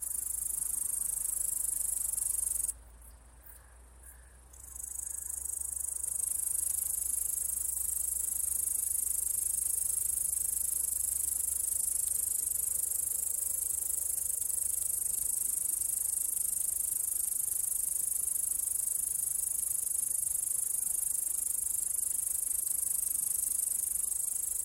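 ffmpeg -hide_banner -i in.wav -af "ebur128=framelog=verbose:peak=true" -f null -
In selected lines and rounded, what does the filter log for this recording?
Integrated loudness:
  I:         -30.0 LUFS
  Threshold: -40.3 LUFS
Loudness range:
  LRA:         5.0 LU
  Threshold: -50.3 LUFS
  LRA low:   -34.2 LUFS
  LRA high:  -29.3 LUFS
True peak:
  Peak:      -21.2 dBFS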